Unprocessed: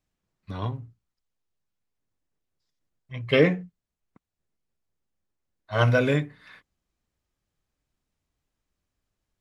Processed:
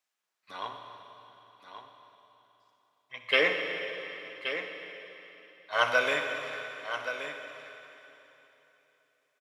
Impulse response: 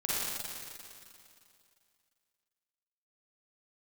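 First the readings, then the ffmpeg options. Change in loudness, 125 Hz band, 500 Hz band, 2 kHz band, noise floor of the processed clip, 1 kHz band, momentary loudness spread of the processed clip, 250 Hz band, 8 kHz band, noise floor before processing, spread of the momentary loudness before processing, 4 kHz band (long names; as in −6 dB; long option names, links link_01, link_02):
−6.5 dB, −28.5 dB, −6.0 dB, +3.0 dB, −79 dBFS, +1.5 dB, 24 LU, −16.5 dB, can't be measured, −85 dBFS, 19 LU, +3.5 dB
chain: -filter_complex "[0:a]highpass=860,aecho=1:1:1125:0.335,asplit=2[link_01][link_02];[1:a]atrim=start_sample=2205,asetrate=32193,aresample=44100[link_03];[link_02][link_03]afir=irnorm=-1:irlink=0,volume=-12.5dB[link_04];[link_01][link_04]amix=inputs=2:normalize=0"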